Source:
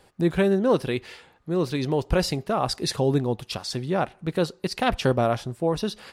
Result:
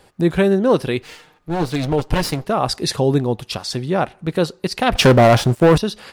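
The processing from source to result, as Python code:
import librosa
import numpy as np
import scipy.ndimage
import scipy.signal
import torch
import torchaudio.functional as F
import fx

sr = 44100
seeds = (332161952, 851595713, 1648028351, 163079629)

y = fx.lower_of_two(x, sr, delay_ms=6.6, at=(1.02, 2.45))
y = fx.leveller(y, sr, passes=3, at=(4.95, 5.78))
y = F.gain(torch.from_numpy(y), 5.5).numpy()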